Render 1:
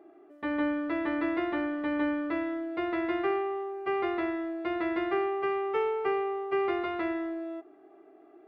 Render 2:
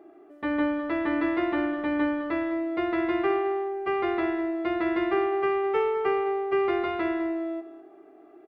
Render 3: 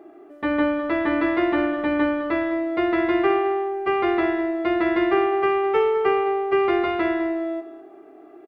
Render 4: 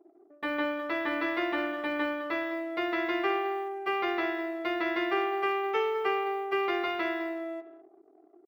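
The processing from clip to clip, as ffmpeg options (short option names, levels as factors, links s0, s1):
-af "lowshelf=f=160:g=3.5,aecho=1:1:206|412:0.224|0.0403,volume=1.41"
-filter_complex "[0:a]asplit=2[s0][s1];[s1]adelay=29,volume=0.211[s2];[s0][s2]amix=inputs=2:normalize=0,volume=1.88"
-af "anlmdn=0.158,aemphasis=mode=production:type=riaa,volume=0.473"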